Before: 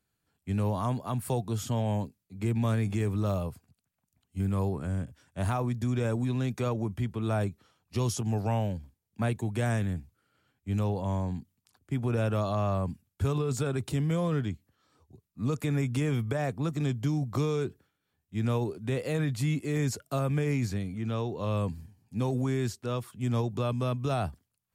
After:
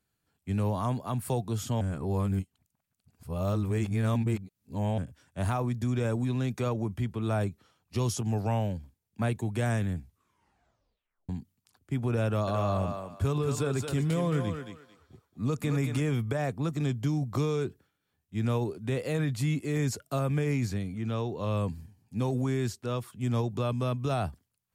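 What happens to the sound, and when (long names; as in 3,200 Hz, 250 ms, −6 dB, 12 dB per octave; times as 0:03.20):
0:01.81–0:04.98: reverse
0:09.98: tape stop 1.31 s
0:12.25–0:16.00: feedback echo with a high-pass in the loop 222 ms, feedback 26%, level −4 dB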